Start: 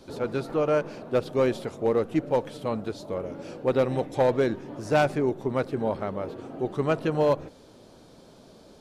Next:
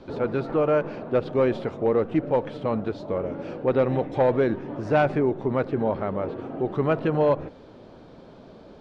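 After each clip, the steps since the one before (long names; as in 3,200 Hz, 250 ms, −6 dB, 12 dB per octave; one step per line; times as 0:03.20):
low-pass filter 2,600 Hz 12 dB per octave
in parallel at +2 dB: brickwall limiter −22.5 dBFS, peak gain reduction 9 dB
on the sum: level −2 dB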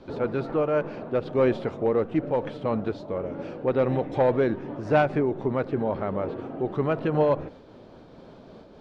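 amplitude modulation by smooth noise, depth 50%
level +1.5 dB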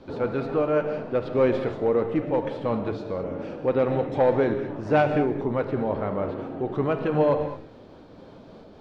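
reverb whose tail is shaped and stops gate 240 ms flat, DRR 6 dB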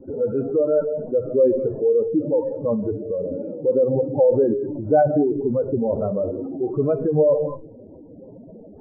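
expanding power law on the bin magnitudes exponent 2.5
level +5 dB
MP3 8 kbit/s 8,000 Hz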